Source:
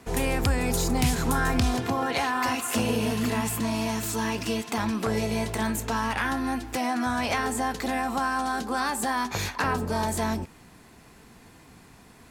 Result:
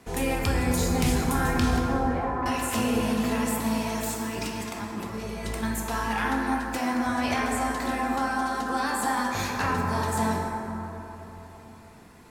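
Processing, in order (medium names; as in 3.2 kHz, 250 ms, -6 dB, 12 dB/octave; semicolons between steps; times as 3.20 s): reverb removal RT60 0.5 s; 1.85–2.46 s: low-pass 1 kHz 12 dB/octave; 4.03–5.63 s: compressor with a negative ratio -34 dBFS, ratio -1; plate-style reverb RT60 3.8 s, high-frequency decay 0.35×, DRR -2 dB; trim -3 dB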